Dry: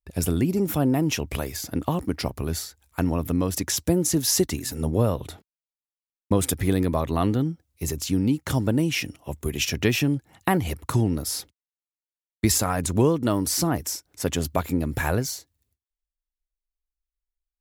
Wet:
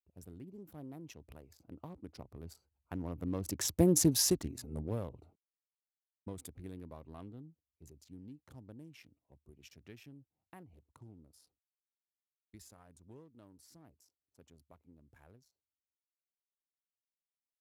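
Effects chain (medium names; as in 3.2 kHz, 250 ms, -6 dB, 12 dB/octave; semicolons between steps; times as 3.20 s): local Wiener filter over 25 samples; Doppler pass-by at 3.97 s, 8 m/s, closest 1.8 m; trim -3 dB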